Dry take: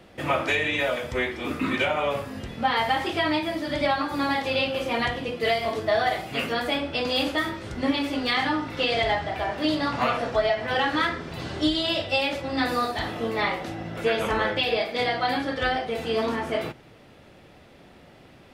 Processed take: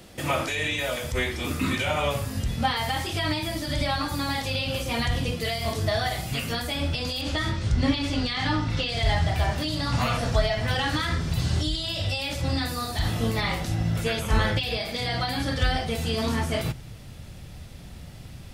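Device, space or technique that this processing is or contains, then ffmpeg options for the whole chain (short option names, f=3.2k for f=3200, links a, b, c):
de-esser from a sidechain: -filter_complex "[0:a]bass=f=250:g=5,treble=f=4k:g=15,asettb=1/sr,asplit=3[a][b][c];[a]atrim=end=7.214[d];[b]atrim=start=7.21:end=8.89,asetpts=PTS-STARTPTS,afade=t=in:d=0.004:c=qsin,afade=t=out:st=1.676:d=0.004:c=qsin,lowpass=5.7k[e];[c]atrim=start=8.886[f];[d][e]acrossfade=d=0.004:c1=hsin:c2=qsin[g];[g][f]acrossfade=d=0.004:c1=qsin:c2=hsin,asubboost=boost=5:cutoff=140,asplit=2[h][i];[i]highpass=6.1k,apad=whole_len=817570[j];[h][j]sidechaincompress=threshold=-38dB:ratio=4:attack=2.9:release=85"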